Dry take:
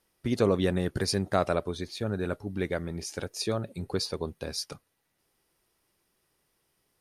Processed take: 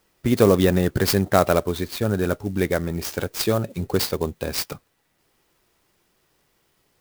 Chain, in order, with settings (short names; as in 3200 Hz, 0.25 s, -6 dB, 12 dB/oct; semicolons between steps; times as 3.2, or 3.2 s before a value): clock jitter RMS 0.032 ms; gain +8.5 dB